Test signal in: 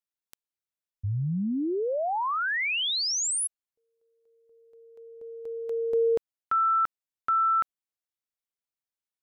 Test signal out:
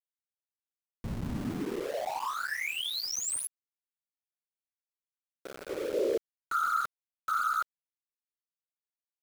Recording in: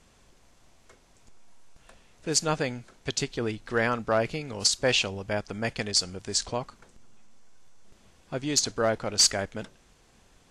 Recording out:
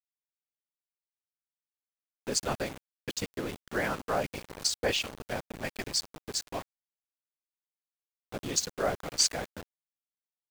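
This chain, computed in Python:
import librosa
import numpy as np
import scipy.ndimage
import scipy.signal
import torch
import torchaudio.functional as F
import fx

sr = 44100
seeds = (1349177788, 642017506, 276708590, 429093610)

y = fx.cheby_harmonics(x, sr, harmonics=(3,), levels_db=(-27,), full_scale_db=-13.0)
y = fx.whisperise(y, sr, seeds[0])
y = np.where(np.abs(y) >= 10.0 ** (-32.5 / 20.0), y, 0.0)
y = y * librosa.db_to_amplitude(-4.5)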